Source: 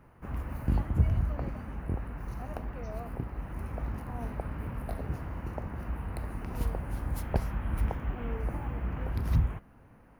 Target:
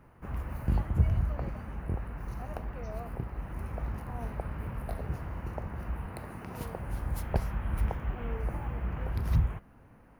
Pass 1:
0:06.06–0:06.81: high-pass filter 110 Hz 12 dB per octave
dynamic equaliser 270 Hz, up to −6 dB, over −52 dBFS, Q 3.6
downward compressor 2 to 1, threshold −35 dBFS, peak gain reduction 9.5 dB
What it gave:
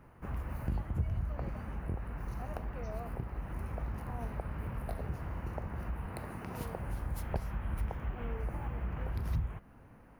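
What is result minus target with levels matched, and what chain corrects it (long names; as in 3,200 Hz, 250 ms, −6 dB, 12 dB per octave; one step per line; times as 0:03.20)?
downward compressor: peak gain reduction +9.5 dB
0:06.06–0:06.81: high-pass filter 110 Hz 12 dB per octave
dynamic equaliser 270 Hz, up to −6 dB, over −52 dBFS, Q 3.6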